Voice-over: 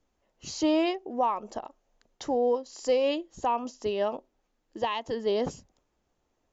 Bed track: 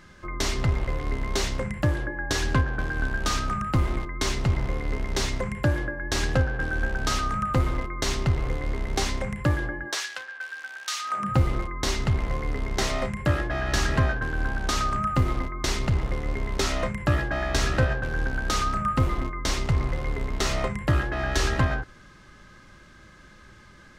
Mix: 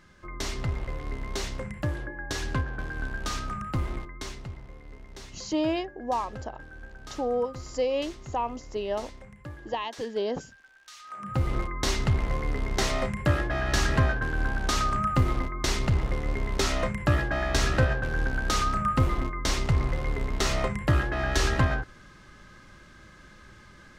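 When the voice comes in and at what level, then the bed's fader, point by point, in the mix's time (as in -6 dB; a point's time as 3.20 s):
4.90 s, -2.0 dB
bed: 3.97 s -6 dB
4.62 s -18 dB
10.91 s -18 dB
11.58 s -0.5 dB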